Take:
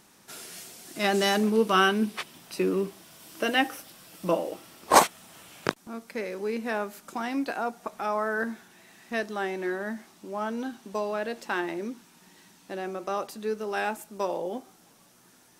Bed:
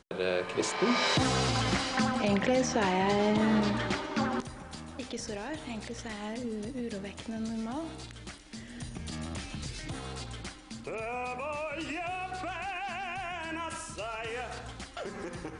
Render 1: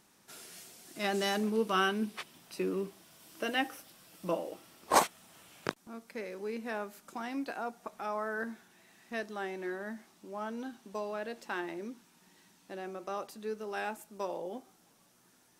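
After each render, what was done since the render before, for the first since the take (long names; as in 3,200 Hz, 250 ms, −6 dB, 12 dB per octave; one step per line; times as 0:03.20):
level −7.5 dB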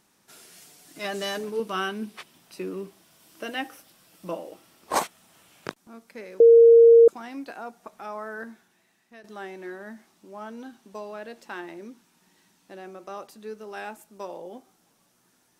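0:00.61–0:01.60: comb filter 6.8 ms
0:06.40–0:07.08: beep over 463 Hz −9 dBFS
0:08.34–0:09.24: fade out, to −13.5 dB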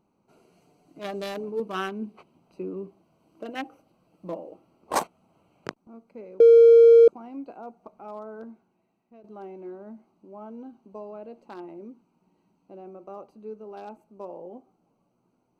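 adaptive Wiener filter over 25 samples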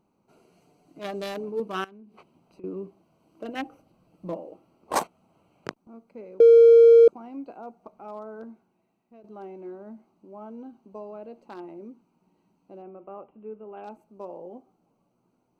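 0:01.84–0:02.64: downward compressor 16 to 1, threshold −45 dBFS
0:03.44–0:04.37: low-shelf EQ 160 Hz +8 dB
0:12.82–0:13.84: elliptic low-pass filter 3,000 Hz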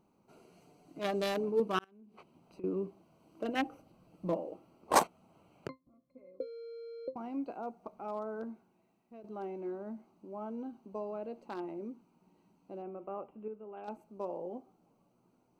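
0:01.79–0:02.67: fade in equal-power
0:05.68–0:07.16: resonances in every octave C, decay 0.14 s
0:13.48–0:13.88: clip gain −5.5 dB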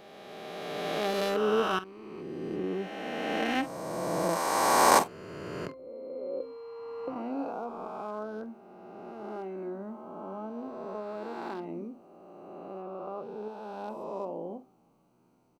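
peak hold with a rise ahead of every peak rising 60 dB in 2.73 s
double-tracking delay 47 ms −14 dB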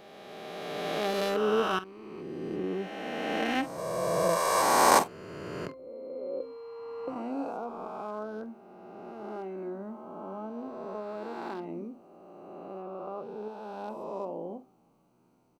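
0:03.78–0:04.62: comb filter 1.8 ms, depth 76%
0:07.08–0:07.57: parametric band 8,300 Hz +10 dB 0.79 octaves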